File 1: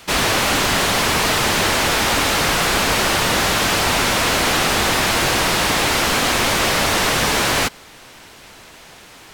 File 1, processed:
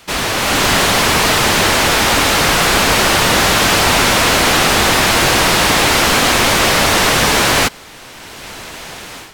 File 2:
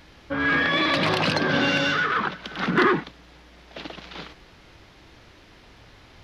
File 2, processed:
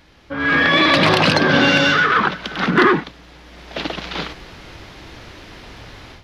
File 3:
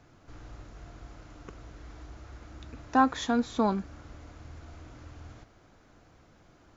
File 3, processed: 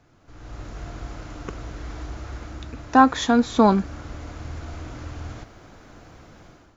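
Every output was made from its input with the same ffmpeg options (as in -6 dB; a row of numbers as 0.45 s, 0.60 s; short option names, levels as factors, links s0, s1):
-af "dynaudnorm=f=340:g=3:m=4.47,volume=0.891"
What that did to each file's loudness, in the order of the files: +5.0 LU, +7.0 LU, +8.5 LU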